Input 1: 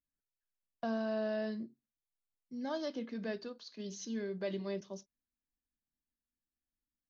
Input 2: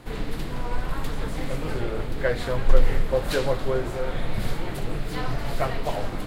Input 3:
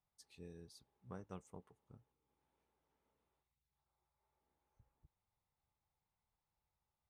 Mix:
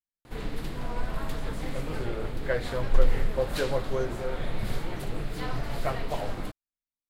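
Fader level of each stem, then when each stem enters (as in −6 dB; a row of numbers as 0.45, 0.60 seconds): −11.0 dB, −4.0 dB, muted; 0.00 s, 0.25 s, muted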